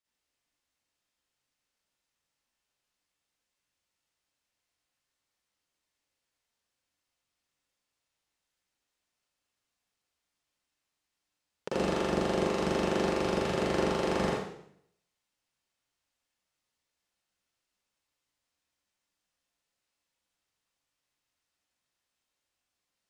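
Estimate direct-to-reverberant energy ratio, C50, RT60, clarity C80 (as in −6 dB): −8.0 dB, −4.0 dB, 0.70 s, 2.0 dB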